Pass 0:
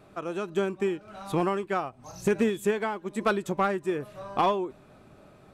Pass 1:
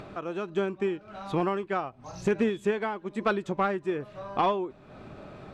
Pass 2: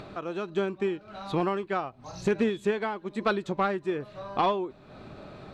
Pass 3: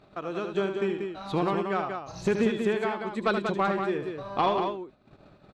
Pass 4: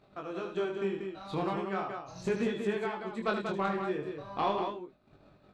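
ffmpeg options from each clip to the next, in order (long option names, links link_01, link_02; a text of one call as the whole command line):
ffmpeg -i in.wav -af "lowpass=4700,acompressor=mode=upward:threshold=-33dB:ratio=2.5,volume=-1dB" out.wav
ffmpeg -i in.wav -af "equalizer=frequency=4100:width_type=o:width=0.35:gain=7.5" out.wav
ffmpeg -i in.wav -filter_complex "[0:a]agate=range=-20dB:threshold=-42dB:ratio=16:detection=peak,asplit=2[link_01][link_02];[link_02]aecho=0:1:75.8|186.6:0.398|0.501[link_03];[link_01][link_03]amix=inputs=2:normalize=0" out.wav
ffmpeg -i in.wav -af "flanger=delay=20:depth=7:speed=0.37,volume=-2.5dB" out.wav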